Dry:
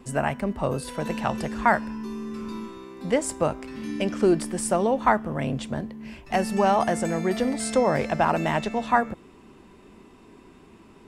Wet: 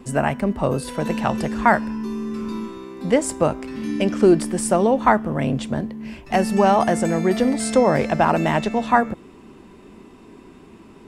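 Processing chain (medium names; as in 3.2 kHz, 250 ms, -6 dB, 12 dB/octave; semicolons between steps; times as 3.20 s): peaking EQ 260 Hz +3 dB 1.9 oct; trim +3.5 dB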